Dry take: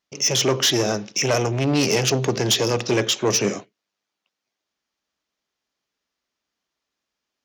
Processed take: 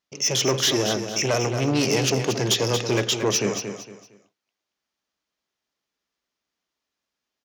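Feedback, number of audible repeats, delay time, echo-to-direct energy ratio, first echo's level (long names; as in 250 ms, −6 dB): 29%, 3, 229 ms, −7.5 dB, −8.0 dB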